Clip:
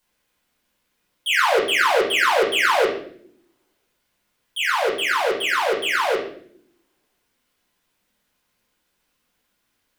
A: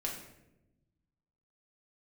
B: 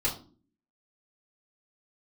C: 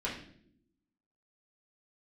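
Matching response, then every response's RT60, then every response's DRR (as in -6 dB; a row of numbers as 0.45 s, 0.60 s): C; 0.95 s, 0.40 s, no single decay rate; -2.0 dB, -7.5 dB, -6.0 dB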